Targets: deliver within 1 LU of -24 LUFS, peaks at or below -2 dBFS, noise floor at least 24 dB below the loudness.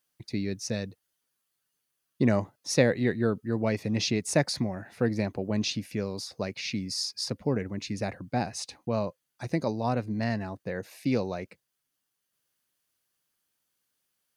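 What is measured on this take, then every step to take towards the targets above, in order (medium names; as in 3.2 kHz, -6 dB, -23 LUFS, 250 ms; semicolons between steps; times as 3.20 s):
loudness -30.0 LUFS; peak level -6.0 dBFS; loudness target -24.0 LUFS
-> trim +6 dB; peak limiter -2 dBFS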